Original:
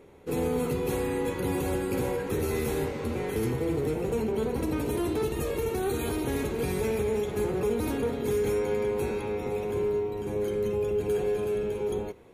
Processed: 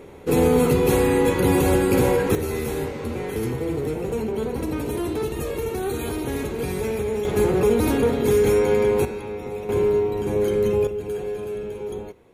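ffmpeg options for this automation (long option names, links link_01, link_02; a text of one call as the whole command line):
ffmpeg -i in.wav -af "asetnsamples=nb_out_samples=441:pad=0,asendcmd='2.35 volume volume 2.5dB;7.25 volume volume 9dB;9.05 volume volume 0dB;9.69 volume volume 8dB;10.87 volume volume -1dB',volume=10.5dB" out.wav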